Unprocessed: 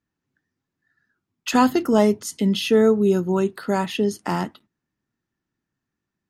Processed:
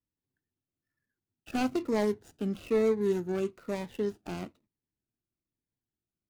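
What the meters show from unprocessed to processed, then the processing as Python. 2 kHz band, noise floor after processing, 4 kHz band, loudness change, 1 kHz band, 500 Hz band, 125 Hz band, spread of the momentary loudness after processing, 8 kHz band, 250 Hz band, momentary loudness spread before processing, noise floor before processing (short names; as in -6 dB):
-12.0 dB, under -85 dBFS, -17.0 dB, -11.0 dB, -15.0 dB, -9.5 dB, -12.5 dB, 12 LU, -17.0 dB, -12.0 dB, 9 LU, -84 dBFS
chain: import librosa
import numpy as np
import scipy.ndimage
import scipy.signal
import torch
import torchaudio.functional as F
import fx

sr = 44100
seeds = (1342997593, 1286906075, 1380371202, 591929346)

y = scipy.signal.medfilt(x, 41)
y = fx.peak_eq(y, sr, hz=190.0, db=-7.5, octaves=1.5)
y = fx.notch_cascade(y, sr, direction='falling', hz=1.1)
y = F.gain(torch.from_numpy(y), -5.0).numpy()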